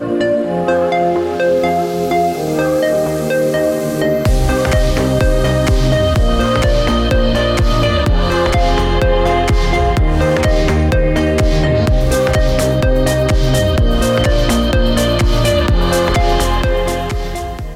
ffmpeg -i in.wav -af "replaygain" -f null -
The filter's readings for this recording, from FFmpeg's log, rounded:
track_gain = -1.9 dB
track_peak = 0.383